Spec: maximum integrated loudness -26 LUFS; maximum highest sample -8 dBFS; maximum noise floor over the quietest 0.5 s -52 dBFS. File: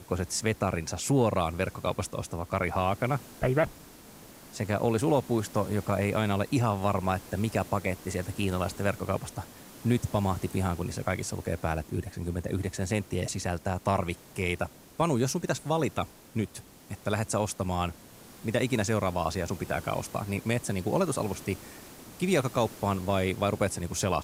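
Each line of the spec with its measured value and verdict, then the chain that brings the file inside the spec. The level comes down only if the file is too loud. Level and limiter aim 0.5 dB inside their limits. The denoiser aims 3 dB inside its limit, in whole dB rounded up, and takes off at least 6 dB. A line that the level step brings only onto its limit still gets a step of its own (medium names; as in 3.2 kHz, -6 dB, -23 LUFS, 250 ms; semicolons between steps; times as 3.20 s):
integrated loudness -30.0 LUFS: pass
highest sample -13.0 dBFS: pass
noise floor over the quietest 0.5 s -50 dBFS: fail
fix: noise reduction 6 dB, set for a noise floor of -50 dBFS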